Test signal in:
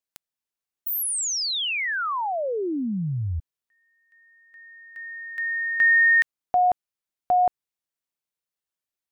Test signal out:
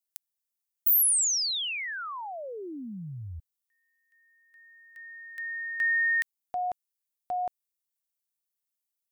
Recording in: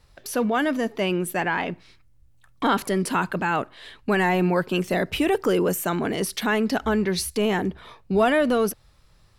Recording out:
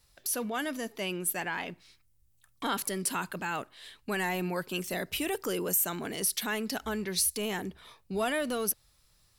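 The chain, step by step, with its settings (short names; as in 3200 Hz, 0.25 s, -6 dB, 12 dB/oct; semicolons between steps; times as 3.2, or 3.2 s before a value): pre-emphasis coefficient 0.8; gain +2 dB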